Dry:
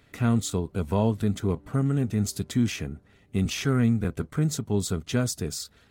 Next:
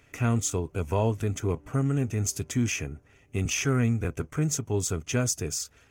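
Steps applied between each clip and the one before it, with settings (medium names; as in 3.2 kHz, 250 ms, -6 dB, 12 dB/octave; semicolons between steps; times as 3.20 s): graphic EQ with 31 bands 200 Hz -12 dB, 2.5 kHz +6 dB, 4 kHz -11 dB, 6.3 kHz +9 dB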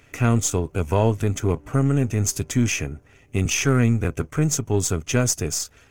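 partial rectifier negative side -3 dB; trim +7 dB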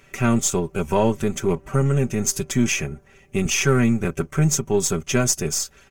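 comb 5.2 ms, depth 74%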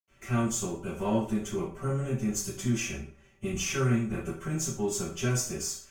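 reverberation RT60 0.45 s, pre-delay 77 ms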